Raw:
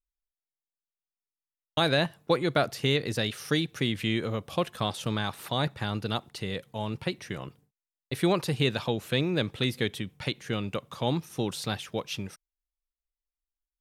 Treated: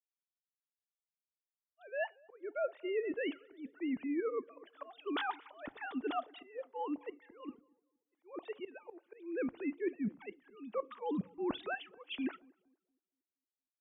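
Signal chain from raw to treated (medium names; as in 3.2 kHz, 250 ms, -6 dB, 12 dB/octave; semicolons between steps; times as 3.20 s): formants replaced by sine waves; gate with hold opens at -46 dBFS; treble shelf 2.3 kHz -11.5 dB; reverse; compression 10:1, threshold -46 dBFS, peak gain reduction 28.5 dB; reverse; slow attack 247 ms; filtered feedback delay 234 ms, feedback 63%, low-pass 1.4 kHz, level -22 dB; on a send at -21.5 dB: reverberation RT60 0.30 s, pre-delay 3 ms; on the sum: three bands expanded up and down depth 70%; trim +11 dB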